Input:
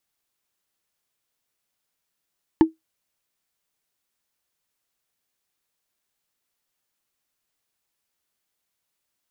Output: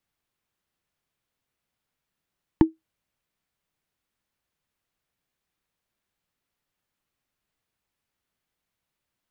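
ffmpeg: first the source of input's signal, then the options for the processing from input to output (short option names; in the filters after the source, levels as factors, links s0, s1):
-f lavfi -i "aevalsrc='0.501*pow(10,-3*t/0.15)*sin(2*PI*321*t)+0.188*pow(10,-3*t/0.044)*sin(2*PI*885*t)+0.0708*pow(10,-3*t/0.02)*sin(2*PI*1734.7*t)+0.0266*pow(10,-3*t/0.011)*sin(2*PI*2867.5*t)+0.01*pow(10,-3*t/0.007)*sin(2*PI*4282.1*t)':d=0.45:s=44100"
-filter_complex "[0:a]bass=f=250:g=7,treble=f=4000:g=-8,acrossover=split=290[s0][s1];[s1]acompressor=threshold=0.0631:ratio=4[s2];[s0][s2]amix=inputs=2:normalize=0"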